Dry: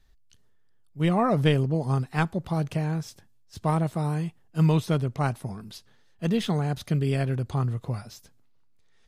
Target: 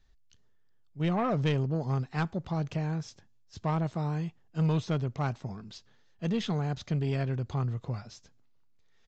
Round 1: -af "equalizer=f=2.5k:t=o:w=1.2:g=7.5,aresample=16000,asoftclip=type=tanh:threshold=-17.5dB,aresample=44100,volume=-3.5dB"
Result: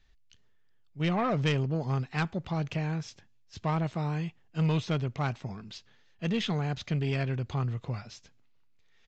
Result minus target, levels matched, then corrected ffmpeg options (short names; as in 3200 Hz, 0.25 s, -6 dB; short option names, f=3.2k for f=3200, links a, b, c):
2000 Hz band +4.0 dB
-af "aresample=16000,asoftclip=type=tanh:threshold=-17.5dB,aresample=44100,volume=-3.5dB"